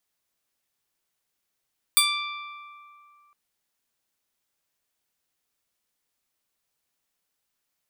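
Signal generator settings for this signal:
Karplus-Strong string D6, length 1.36 s, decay 2.60 s, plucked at 0.19, bright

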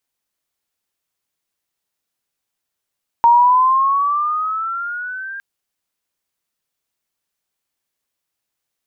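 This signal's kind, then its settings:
pitch glide with a swell sine, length 2.16 s, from 930 Hz, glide +9.5 semitones, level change −20 dB, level −6.5 dB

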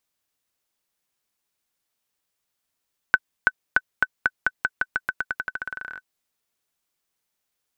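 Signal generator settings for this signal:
bouncing ball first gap 0.33 s, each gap 0.89, 1,510 Hz, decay 44 ms −3 dBFS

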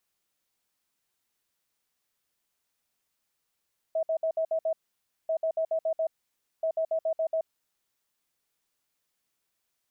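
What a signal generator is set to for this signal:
beeps in groups sine 645 Hz, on 0.08 s, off 0.06 s, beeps 6, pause 0.56 s, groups 3, −24 dBFS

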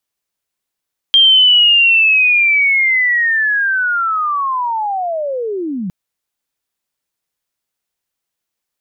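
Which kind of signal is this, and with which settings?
glide linear 3,200 Hz → 170 Hz −5 dBFS → −18.5 dBFS 4.76 s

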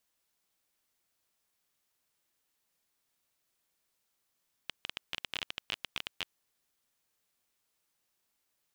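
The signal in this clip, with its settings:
Geiger counter clicks 17 per second −17.5 dBFS 1.69 s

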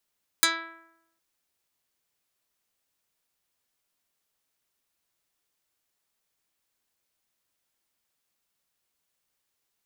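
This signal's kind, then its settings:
Karplus-Strong string E4, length 0.76 s, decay 0.88 s, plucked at 0.12, dark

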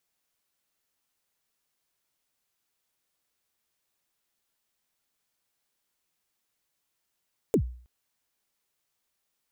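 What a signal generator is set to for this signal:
synth kick length 0.32 s, from 510 Hz, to 61 Hz, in 82 ms, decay 0.48 s, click on, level −16 dB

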